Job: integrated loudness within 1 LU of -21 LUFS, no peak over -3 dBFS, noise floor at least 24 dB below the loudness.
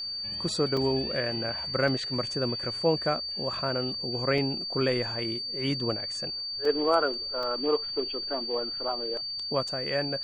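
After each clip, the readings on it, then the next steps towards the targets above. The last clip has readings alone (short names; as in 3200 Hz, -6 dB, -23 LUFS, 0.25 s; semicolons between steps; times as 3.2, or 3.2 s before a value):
dropouts 6; longest dropout 2.9 ms; steady tone 4600 Hz; tone level -32 dBFS; loudness -28.5 LUFS; peak -11.0 dBFS; loudness target -21.0 LUFS
-> interpolate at 0.77/1.88/4.38/6.65/7.43/9.68, 2.9 ms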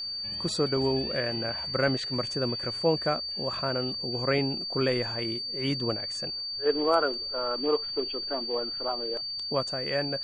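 dropouts 0; steady tone 4600 Hz; tone level -32 dBFS
-> notch 4600 Hz, Q 30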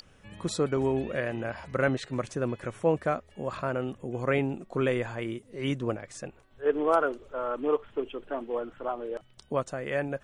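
steady tone none; loudness -30.5 LUFS; peak -11.0 dBFS; loudness target -21.0 LUFS
-> gain +9.5 dB; limiter -3 dBFS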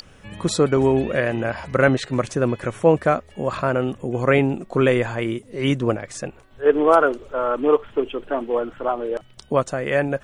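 loudness -21.0 LUFS; peak -3.0 dBFS; noise floor -49 dBFS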